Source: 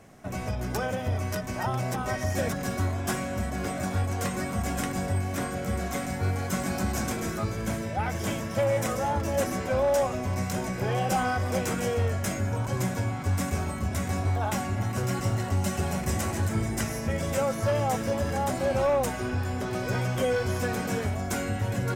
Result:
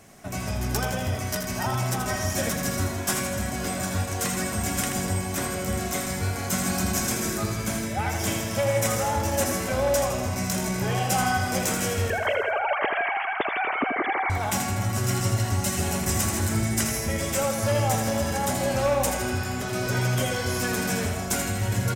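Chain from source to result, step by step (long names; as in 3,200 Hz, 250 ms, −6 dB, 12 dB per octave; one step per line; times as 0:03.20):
0:12.10–0:14.30: three sine waves on the formant tracks
high-shelf EQ 3,000 Hz +9.5 dB
notch filter 500 Hz, Q 12
repeating echo 81 ms, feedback 59%, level −6.5 dB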